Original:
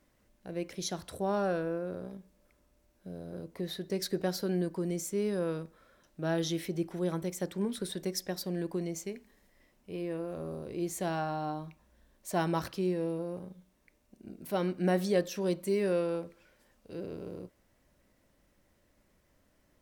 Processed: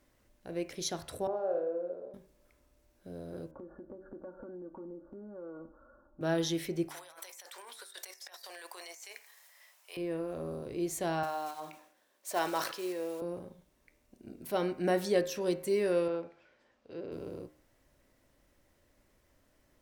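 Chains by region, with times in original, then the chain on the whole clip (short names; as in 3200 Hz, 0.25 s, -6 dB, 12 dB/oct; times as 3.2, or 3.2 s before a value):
1.27–2.14 band-pass 530 Hz, Q 2.9 + flutter echo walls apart 9.8 m, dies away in 0.53 s
3.51–6.21 steep low-pass 1500 Hz 96 dB/oct + comb 3.5 ms, depth 80% + compressor, threshold -43 dBFS
6.89–9.97 HPF 780 Hz 24 dB/oct + negative-ratio compressor -54 dBFS + high shelf 4400 Hz +7.5 dB
11.23–13.22 block floating point 5-bit + HPF 470 Hz + sustainer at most 87 dB/s
16.08–17.12 HPF 230 Hz 6 dB/oct + air absorption 140 m
whole clip: bell 190 Hz -11 dB 0.21 oct; de-hum 76.33 Hz, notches 37; gain +1 dB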